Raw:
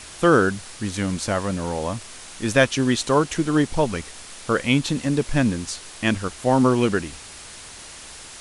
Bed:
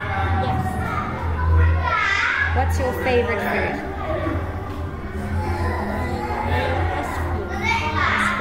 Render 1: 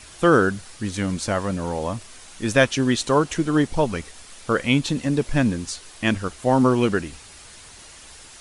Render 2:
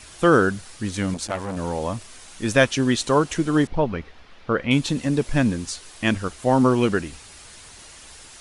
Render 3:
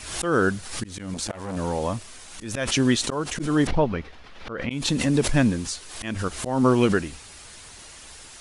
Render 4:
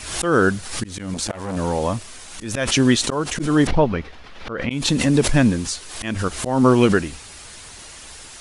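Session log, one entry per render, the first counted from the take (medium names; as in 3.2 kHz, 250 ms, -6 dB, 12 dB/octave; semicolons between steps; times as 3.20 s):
noise reduction 6 dB, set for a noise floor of -41 dBFS
1.14–1.57 s: transformer saturation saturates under 1.1 kHz; 3.67–4.71 s: distance through air 290 m
slow attack 251 ms; swell ahead of each attack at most 63 dB/s
trim +4.5 dB; peak limiter -3 dBFS, peak gain reduction 1 dB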